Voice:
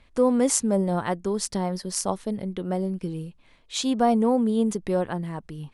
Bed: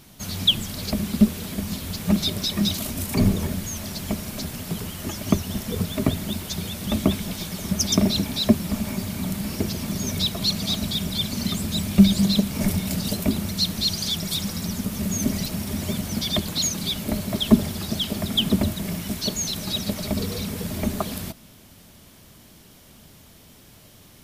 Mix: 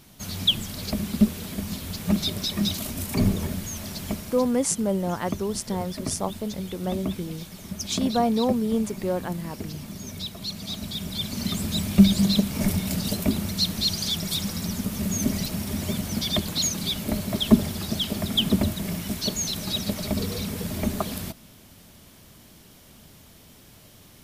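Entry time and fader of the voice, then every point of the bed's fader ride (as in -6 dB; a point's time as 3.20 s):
4.15 s, -2.0 dB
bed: 4.10 s -2.5 dB
4.57 s -10 dB
10.47 s -10 dB
11.62 s -1 dB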